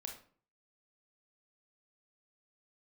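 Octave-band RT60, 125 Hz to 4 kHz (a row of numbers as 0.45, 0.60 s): 0.60, 0.55, 0.50, 0.45, 0.40, 0.30 s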